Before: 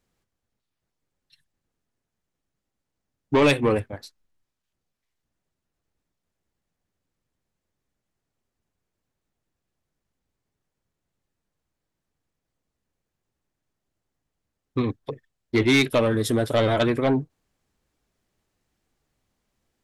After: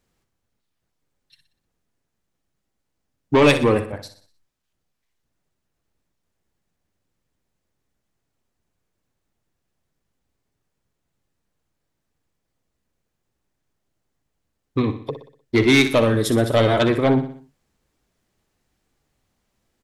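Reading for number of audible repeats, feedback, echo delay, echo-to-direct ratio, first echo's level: 4, 46%, 61 ms, -10.0 dB, -11.0 dB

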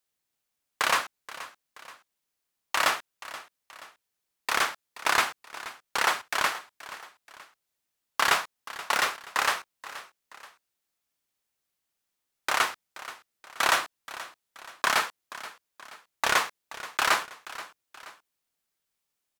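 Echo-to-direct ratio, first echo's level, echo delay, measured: -15.0 dB, -16.0 dB, 478 ms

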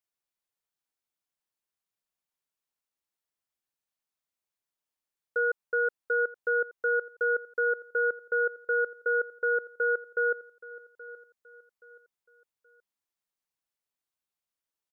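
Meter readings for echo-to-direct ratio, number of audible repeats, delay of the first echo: -18.0 dB, 2, 825 ms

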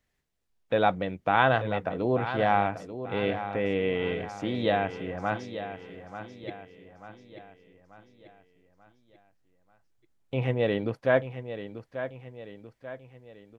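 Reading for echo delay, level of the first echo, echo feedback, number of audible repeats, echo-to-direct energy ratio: 888 ms, -11.0 dB, 47%, 4, -10.0 dB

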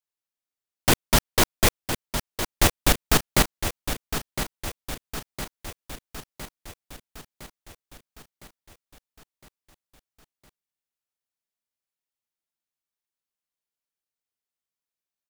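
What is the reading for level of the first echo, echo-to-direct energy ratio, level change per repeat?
-9.5 dB, -8.0 dB, -5.0 dB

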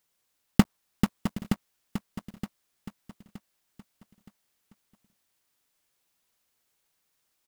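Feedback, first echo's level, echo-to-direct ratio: 35%, -9.0 dB, -8.5 dB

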